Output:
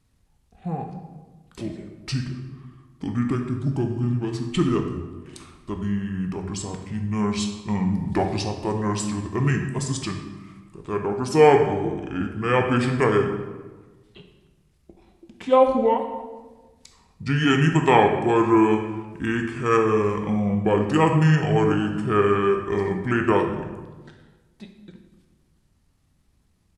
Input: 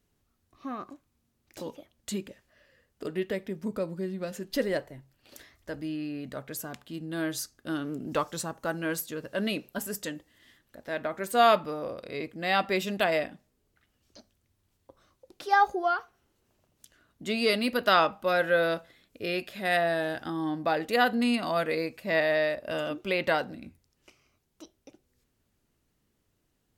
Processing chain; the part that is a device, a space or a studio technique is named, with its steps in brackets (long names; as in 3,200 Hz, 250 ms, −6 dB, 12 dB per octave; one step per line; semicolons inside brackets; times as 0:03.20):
monster voice (pitch shifter −7.5 semitones; low-shelf EQ 190 Hz +7 dB; convolution reverb RT60 1.3 s, pre-delay 12 ms, DRR 4 dB)
level +4 dB